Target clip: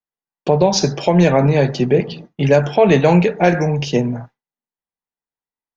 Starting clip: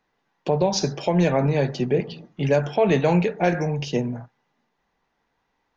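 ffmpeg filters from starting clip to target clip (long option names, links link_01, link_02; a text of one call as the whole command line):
ffmpeg -i in.wav -af "agate=range=-33dB:threshold=-38dB:ratio=3:detection=peak,volume=7dB" out.wav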